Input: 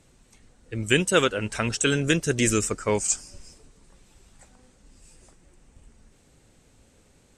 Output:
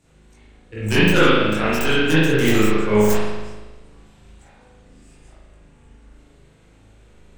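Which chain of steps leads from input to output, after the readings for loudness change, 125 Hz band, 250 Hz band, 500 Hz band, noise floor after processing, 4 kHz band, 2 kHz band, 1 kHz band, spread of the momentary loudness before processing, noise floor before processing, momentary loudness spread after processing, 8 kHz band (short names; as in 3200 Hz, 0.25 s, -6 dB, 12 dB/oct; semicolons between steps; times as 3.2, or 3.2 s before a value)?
+6.0 dB, +6.5 dB, +8.5 dB, +7.0 dB, -52 dBFS, +5.0 dB, +7.0 dB, +8.0 dB, 7 LU, -60 dBFS, 10 LU, -7.0 dB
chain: tracing distortion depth 0.15 ms; chorus voices 4, 0.81 Hz, delay 21 ms, depth 3.7 ms; spring tank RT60 1.2 s, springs 38 ms, chirp 20 ms, DRR -9.5 dB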